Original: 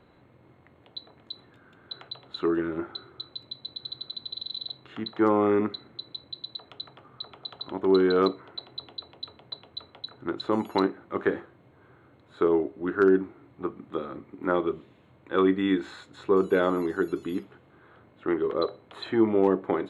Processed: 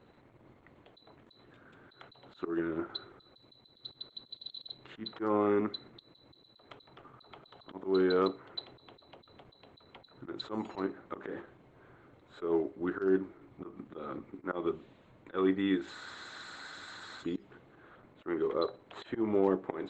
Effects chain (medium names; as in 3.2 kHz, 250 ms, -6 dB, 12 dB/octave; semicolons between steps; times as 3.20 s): bass shelf 110 Hz -3.5 dB; slow attack 155 ms; in parallel at -0.5 dB: compression 10:1, threshold -33 dBFS, peak gain reduction 16.5 dB; on the sum: spectral freeze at 15.96 s, 1.26 s; trim -6.5 dB; Opus 12 kbps 48 kHz